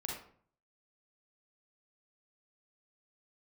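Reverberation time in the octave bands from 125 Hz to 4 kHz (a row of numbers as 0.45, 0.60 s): 0.75, 0.60, 0.55, 0.50, 0.45, 0.35 s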